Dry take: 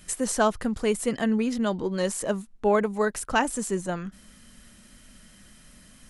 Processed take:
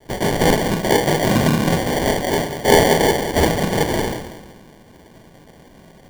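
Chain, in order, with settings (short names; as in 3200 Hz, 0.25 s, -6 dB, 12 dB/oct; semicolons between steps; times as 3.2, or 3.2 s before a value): rattling part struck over -38 dBFS, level -19 dBFS; bell 150 Hz -13.5 dB 0.75 oct; in parallel at -2.5 dB: limiter -19 dBFS, peak gain reduction 9.5 dB; on the sum: de-hum 183.1 Hz, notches 37; noise vocoder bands 4; analogue delay 0.189 s, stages 2048, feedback 37%, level -9.5 dB; reverb RT60 0.55 s, pre-delay 18 ms, DRR -3 dB; sample-rate reducer 1300 Hz, jitter 0%; gain +2 dB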